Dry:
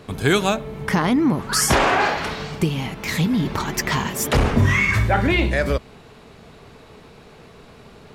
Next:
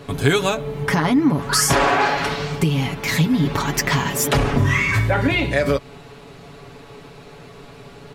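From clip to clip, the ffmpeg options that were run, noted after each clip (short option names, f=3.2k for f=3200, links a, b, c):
-af "acompressor=threshold=-20dB:ratio=2,aecho=1:1:7.1:0.65,volume=2.5dB"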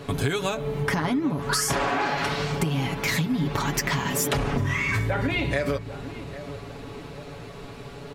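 -filter_complex "[0:a]acompressor=threshold=-22dB:ratio=6,asplit=2[a][b];[b]adelay=800,lowpass=f=1k:p=1,volume=-12dB,asplit=2[c][d];[d]adelay=800,lowpass=f=1k:p=1,volume=0.55,asplit=2[e][f];[f]adelay=800,lowpass=f=1k:p=1,volume=0.55,asplit=2[g][h];[h]adelay=800,lowpass=f=1k:p=1,volume=0.55,asplit=2[i][j];[j]adelay=800,lowpass=f=1k:p=1,volume=0.55,asplit=2[k][l];[l]adelay=800,lowpass=f=1k:p=1,volume=0.55[m];[a][c][e][g][i][k][m]amix=inputs=7:normalize=0"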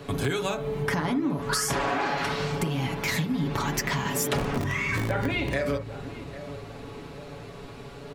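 -filter_complex "[0:a]acrossover=split=120|1800|6400[a][b][c][d];[a]aeval=exprs='(mod(17.8*val(0)+1,2)-1)/17.8':c=same[e];[b]asplit=2[f][g];[g]adelay=46,volume=-6.5dB[h];[f][h]amix=inputs=2:normalize=0[i];[e][i][c][d]amix=inputs=4:normalize=0,volume=-2.5dB"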